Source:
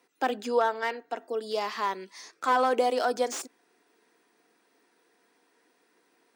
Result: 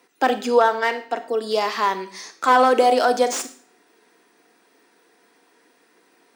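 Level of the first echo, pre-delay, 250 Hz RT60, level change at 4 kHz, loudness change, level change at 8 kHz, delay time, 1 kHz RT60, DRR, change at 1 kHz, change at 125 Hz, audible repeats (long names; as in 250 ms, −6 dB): no echo audible, 31 ms, 0.45 s, +9.0 dB, +9.0 dB, +9.0 dB, no echo audible, 0.45 s, 10.5 dB, +9.0 dB, can't be measured, no echo audible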